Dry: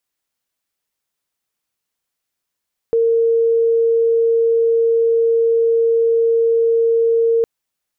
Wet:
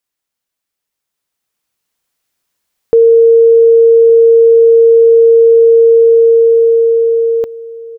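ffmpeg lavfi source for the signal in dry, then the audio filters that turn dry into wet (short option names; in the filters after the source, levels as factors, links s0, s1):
-f lavfi -i "sine=f=459:d=4.51:r=44100,volume=6.56dB"
-filter_complex "[0:a]dynaudnorm=f=370:g=9:m=3.76,asplit=2[s0][s1];[s1]adelay=1166,volume=0.112,highshelf=f=4000:g=-26.2[s2];[s0][s2]amix=inputs=2:normalize=0"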